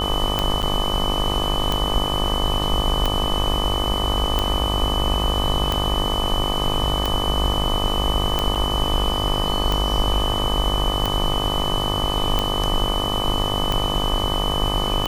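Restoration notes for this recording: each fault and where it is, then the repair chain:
buzz 50 Hz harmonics 25 -26 dBFS
tick 45 rpm -7 dBFS
whine 3 kHz -25 dBFS
0.62–0.63 s: dropout 8.4 ms
8.55–8.56 s: dropout 6.5 ms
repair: de-click; de-hum 50 Hz, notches 25; band-stop 3 kHz, Q 30; interpolate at 0.62 s, 8.4 ms; interpolate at 8.55 s, 6.5 ms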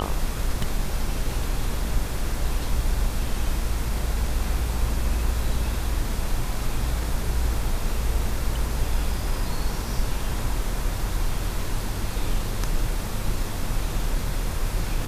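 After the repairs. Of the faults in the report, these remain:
nothing left

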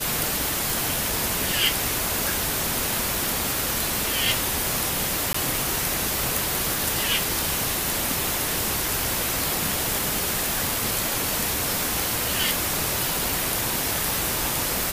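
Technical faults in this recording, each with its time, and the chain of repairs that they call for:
0.70 s: pop
3.15 s: pop
5.33–5.34 s: dropout 14 ms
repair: de-click; interpolate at 5.33 s, 14 ms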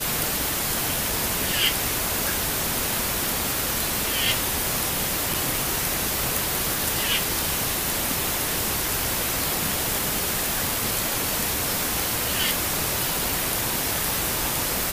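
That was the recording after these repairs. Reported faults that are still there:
nothing left

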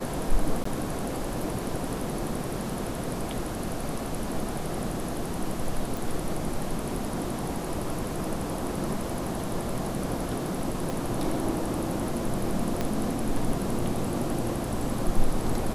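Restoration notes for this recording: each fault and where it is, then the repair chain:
0.64–0.65 s: dropout 14 ms
5.97 s: pop
10.90 s: pop
12.81 s: pop -14 dBFS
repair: de-click; interpolate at 0.64 s, 14 ms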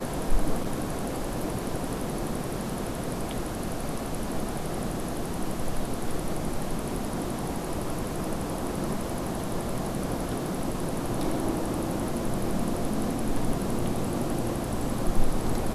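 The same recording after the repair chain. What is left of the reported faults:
10.90 s: pop
12.81 s: pop

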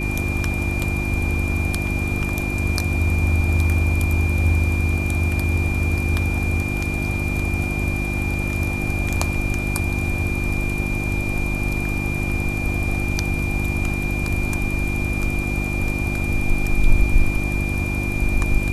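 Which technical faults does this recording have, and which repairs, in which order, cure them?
hum 50 Hz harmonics 7 -25 dBFS
whine 2.4 kHz -27 dBFS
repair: band-stop 2.4 kHz, Q 30; de-hum 50 Hz, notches 7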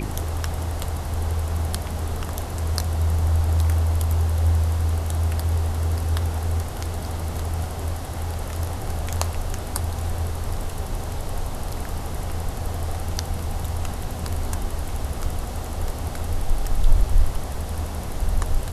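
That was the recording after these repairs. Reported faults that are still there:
nothing left

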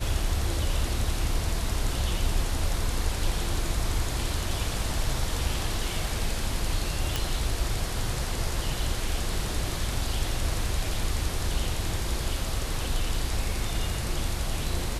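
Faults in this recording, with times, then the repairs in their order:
7.16 s: pop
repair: de-click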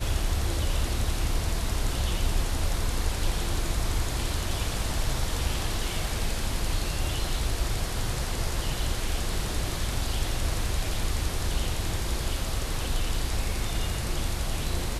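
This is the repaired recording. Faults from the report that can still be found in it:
nothing left

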